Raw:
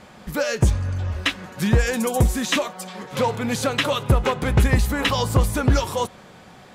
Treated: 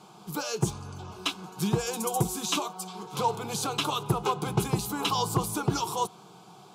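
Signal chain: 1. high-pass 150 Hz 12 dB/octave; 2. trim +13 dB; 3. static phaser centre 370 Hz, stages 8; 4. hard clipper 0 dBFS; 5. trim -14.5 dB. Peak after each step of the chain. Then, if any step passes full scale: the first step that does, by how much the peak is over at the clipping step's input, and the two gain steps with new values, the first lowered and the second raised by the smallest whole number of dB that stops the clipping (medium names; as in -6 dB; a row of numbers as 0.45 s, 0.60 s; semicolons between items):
-5.5 dBFS, +7.5 dBFS, +4.0 dBFS, 0.0 dBFS, -14.5 dBFS; step 2, 4.0 dB; step 2 +9 dB, step 5 -10.5 dB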